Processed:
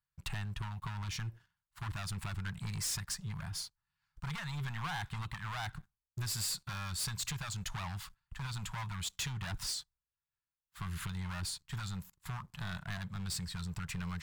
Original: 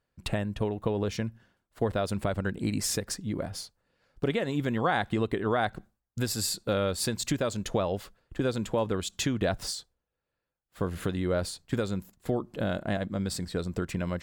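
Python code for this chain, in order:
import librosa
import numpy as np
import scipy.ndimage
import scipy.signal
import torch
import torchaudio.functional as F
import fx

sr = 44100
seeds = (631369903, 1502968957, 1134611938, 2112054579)

y = np.clip(x, -10.0 ** (-28.0 / 20.0), 10.0 ** (-28.0 / 20.0))
y = scipy.signal.sosfilt(scipy.signal.cheby1(3, 1.0, [160.0, 920.0], 'bandstop', fs=sr, output='sos'), y)
y = fx.leveller(y, sr, passes=2)
y = y * librosa.db_to_amplitude(-7.5)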